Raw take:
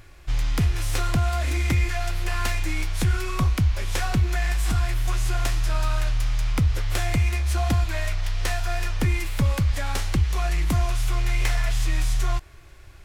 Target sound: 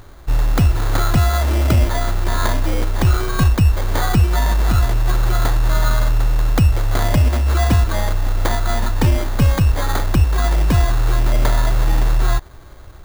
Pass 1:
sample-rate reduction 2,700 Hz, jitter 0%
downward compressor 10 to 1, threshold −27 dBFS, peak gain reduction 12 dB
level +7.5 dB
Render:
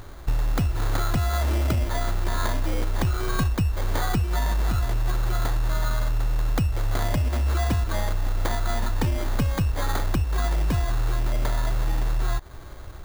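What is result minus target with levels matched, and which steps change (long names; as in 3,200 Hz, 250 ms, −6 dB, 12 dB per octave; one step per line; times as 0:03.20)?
downward compressor: peak gain reduction +12 dB
remove: downward compressor 10 to 1, threshold −27 dBFS, peak gain reduction 12 dB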